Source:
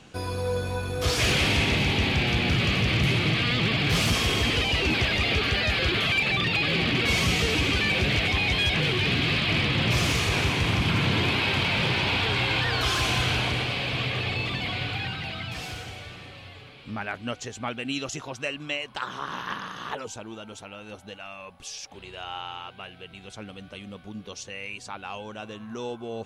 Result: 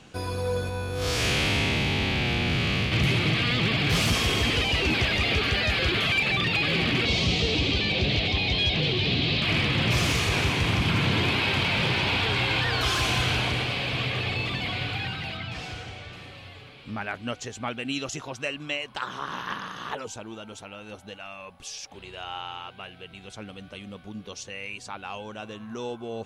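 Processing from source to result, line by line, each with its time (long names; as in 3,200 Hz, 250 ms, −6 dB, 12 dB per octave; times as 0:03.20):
0:00.69–0:02.92: spectrum smeared in time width 117 ms
0:07.05–0:09.42: drawn EQ curve 660 Hz 0 dB, 1,500 Hz −10 dB, 4,000 Hz +4 dB, 7,100 Hz −8 dB, 13,000 Hz −23 dB
0:15.37–0:16.13: high-frequency loss of the air 65 metres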